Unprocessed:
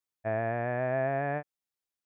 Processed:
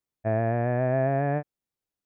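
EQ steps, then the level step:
tilt shelving filter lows +6 dB, about 640 Hz
+4.0 dB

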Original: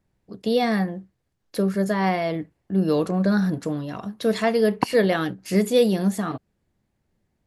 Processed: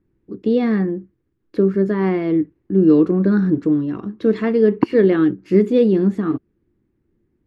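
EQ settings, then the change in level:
drawn EQ curve 200 Hz 0 dB, 340 Hz +11 dB, 660 Hz −13 dB, 1,200 Hz −4 dB, 2,500 Hz −8 dB, 7,200 Hz −23 dB, 10,000 Hz −30 dB
+4.0 dB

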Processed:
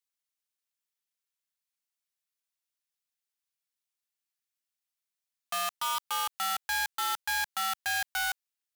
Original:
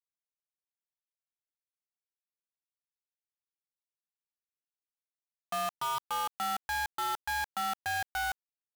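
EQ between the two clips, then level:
tilt shelving filter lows −7 dB, about 840 Hz
parametric band 260 Hz −4 dB 2.9 octaves
0.0 dB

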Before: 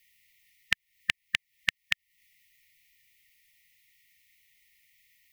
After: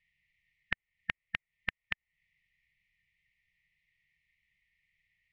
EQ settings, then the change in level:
low-pass filter 1,500 Hz 12 dB per octave
0.0 dB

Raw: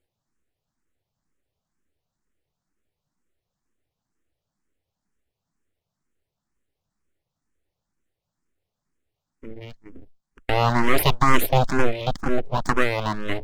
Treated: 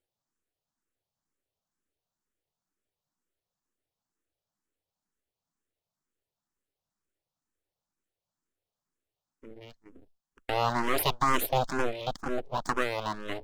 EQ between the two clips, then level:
low-shelf EQ 260 Hz −10.5 dB
parametric band 2,100 Hz −5 dB 0.73 octaves
−4.5 dB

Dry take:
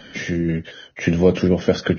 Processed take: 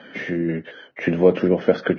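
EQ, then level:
band-pass filter 240–2,100 Hz
+1.5 dB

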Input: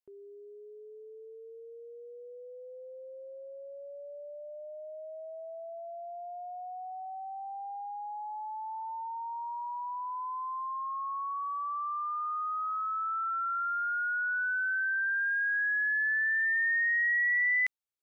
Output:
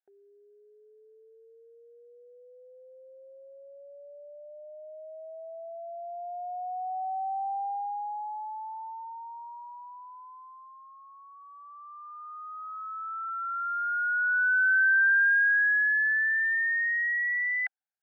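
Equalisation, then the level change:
pair of resonant band-passes 1,100 Hz, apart 1 octave
+8.5 dB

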